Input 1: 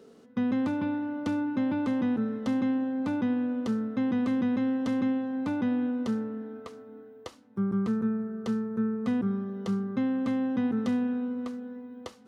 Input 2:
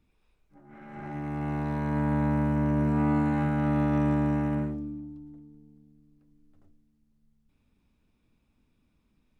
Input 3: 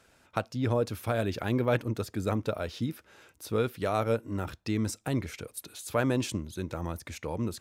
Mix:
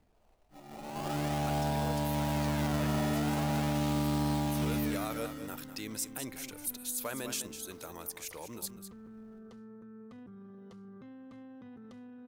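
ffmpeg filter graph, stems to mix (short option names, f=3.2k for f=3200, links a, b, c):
-filter_complex "[0:a]asubboost=boost=3.5:cutoff=93,acompressor=threshold=-38dB:ratio=6,alimiter=level_in=15.5dB:limit=-24dB:level=0:latency=1:release=16,volume=-15.5dB,adelay=1050,volume=-5dB[a];[1:a]acrusher=samples=19:mix=1:aa=0.000001:lfo=1:lforange=19:lforate=0.42,equalizer=f=680:w=2:g=10,acrusher=bits=3:mode=log:mix=0:aa=0.000001,volume=0dB,asplit=2[b][c];[c]volume=-7dB[d];[2:a]aemphasis=mode=production:type=riaa,acrusher=bits=9:mix=0:aa=0.000001,adelay=1100,volume=-7.5dB,asplit=2[e][f];[f]volume=-11dB[g];[d][g]amix=inputs=2:normalize=0,aecho=0:1:202:1[h];[a][b][e][h]amix=inputs=4:normalize=0,alimiter=limit=-24dB:level=0:latency=1:release=14"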